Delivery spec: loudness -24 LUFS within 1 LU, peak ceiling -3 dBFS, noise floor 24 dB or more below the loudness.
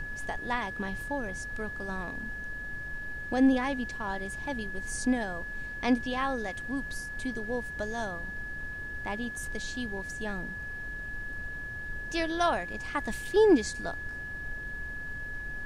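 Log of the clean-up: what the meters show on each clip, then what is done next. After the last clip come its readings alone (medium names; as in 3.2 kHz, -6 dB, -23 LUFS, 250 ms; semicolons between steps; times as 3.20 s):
steady tone 1.7 kHz; tone level -37 dBFS; noise floor -39 dBFS; noise floor target -57 dBFS; loudness -32.5 LUFS; peak level -13.0 dBFS; loudness target -24.0 LUFS
-> band-stop 1.7 kHz, Q 30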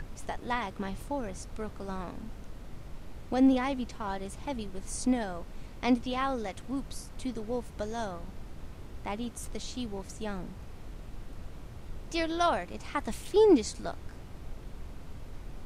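steady tone not found; noise floor -46 dBFS; noise floor target -56 dBFS
-> noise print and reduce 10 dB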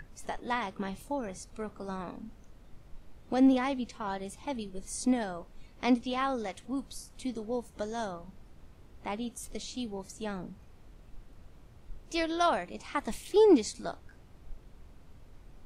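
noise floor -55 dBFS; noise floor target -56 dBFS
-> noise print and reduce 6 dB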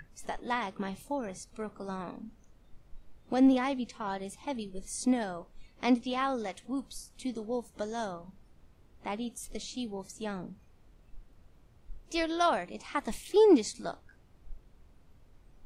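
noise floor -61 dBFS; loudness -32.0 LUFS; peak level -13.0 dBFS; loudness target -24.0 LUFS
-> trim +8 dB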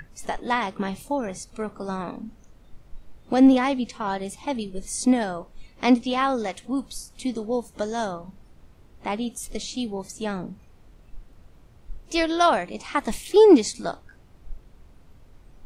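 loudness -24.0 LUFS; peak level -5.0 dBFS; noise floor -53 dBFS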